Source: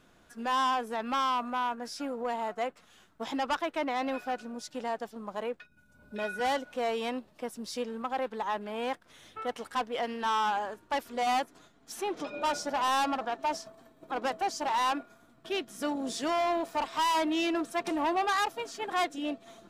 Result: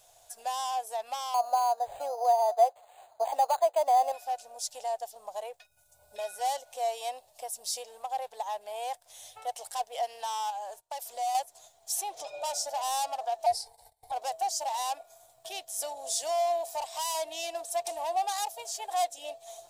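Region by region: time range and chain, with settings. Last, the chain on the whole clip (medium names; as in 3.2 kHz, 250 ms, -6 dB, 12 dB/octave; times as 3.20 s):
1.34–4.12 s: high-pass 240 Hz 6 dB/octave + peaking EQ 680 Hz +13.5 dB 2.6 oct + decimation joined by straight lines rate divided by 8×
10.50–11.35 s: gate -55 dBFS, range -20 dB + peaking EQ 77 Hz -9.5 dB 0.86 oct + compression 4:1, threshold -34 dBFS
13.46–14.12 s: rippled EQ curve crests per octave 0.9, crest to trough 12 dB + frequency shift -200 Hz + gate -57 dBFS, range -17 dB
whole clip: bass shelf 320 Hz -9 dB; compression 1.5:1, threshold -44 dBFS; FFT filter 120 Hz 0 dB, 230 Hz -30 dB, 720 Hz +10 dB, 1.3 kHz -13 dB, 8 kHz +14 dB; trim +1.5 dB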